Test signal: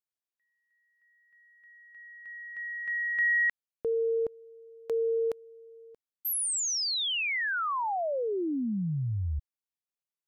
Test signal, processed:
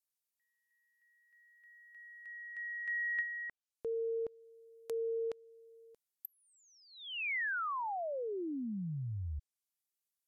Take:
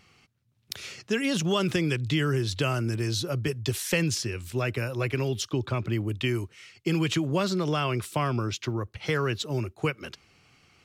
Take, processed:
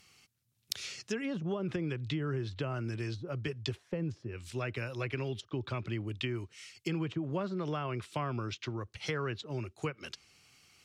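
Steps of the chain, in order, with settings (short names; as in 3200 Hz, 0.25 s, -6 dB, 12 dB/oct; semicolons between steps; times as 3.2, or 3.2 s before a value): pre-emphasis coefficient 0.8; treble ducked by the level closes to 680 Hz, closed at -32 dBFS; gain +5.5 dB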